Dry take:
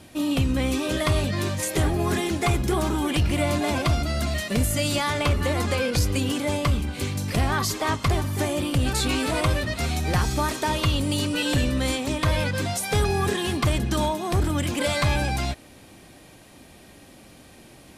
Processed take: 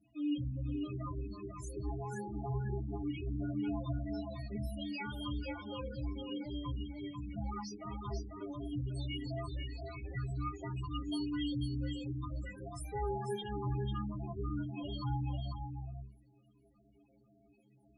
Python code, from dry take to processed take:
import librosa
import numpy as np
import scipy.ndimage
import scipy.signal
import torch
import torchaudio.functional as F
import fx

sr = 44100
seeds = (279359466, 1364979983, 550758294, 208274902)

y = fx.rattle_buzz(x, sr, strikes_db=-30.0, level_db=-30.0)
y = fx.low_shelf(y, sr, hz=150.0, db=-3.5)
y = fx.notch(y, sr, hz=520.0, q=14.0)
y = fx.stiff_resonator(y, sr, f0_hz=61.0, decay_s=0.55, stiffness=0.03)
y = fx.spec_topn(y, sr, count=8)
y = fx.high_shelf(y, sr, hz=5200.0, db=-7.0)
y = fx.hum_notches(y, sr, base_hz=50, count=6)
y = y + 10.0 ** (-5.5 / 20.0) * np.pad(y, (int(494 * sr / 1000.0), 0))[:len(y)]
y = y * librosa.db_to_amplitude(-3.5)